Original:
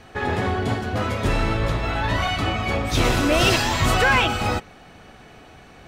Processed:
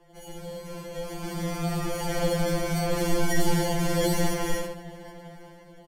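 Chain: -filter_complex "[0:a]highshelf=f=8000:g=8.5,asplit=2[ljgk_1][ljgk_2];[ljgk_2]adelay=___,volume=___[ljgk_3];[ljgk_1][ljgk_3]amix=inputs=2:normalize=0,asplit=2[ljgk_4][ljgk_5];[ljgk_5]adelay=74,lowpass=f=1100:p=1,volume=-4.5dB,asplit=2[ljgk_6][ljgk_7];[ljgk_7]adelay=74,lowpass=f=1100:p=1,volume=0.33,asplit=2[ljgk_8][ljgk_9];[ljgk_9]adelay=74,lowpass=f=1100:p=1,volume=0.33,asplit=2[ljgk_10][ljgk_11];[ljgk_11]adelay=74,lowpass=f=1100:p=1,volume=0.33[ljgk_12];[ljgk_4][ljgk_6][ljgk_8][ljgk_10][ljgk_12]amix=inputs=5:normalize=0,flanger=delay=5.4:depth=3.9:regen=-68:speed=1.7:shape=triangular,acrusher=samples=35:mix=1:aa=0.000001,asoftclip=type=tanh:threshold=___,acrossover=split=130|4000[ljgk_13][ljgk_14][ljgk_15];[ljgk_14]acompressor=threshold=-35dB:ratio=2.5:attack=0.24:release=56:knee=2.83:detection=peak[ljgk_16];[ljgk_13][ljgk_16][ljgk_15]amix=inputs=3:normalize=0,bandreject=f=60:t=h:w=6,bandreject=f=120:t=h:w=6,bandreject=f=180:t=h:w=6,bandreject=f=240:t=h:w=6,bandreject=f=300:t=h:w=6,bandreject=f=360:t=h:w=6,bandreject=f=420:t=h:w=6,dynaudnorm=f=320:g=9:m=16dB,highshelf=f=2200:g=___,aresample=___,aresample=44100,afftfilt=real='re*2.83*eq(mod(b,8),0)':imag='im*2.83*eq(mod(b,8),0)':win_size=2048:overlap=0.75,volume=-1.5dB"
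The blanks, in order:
13, -13.5dB, -21dB, -6.5, 32000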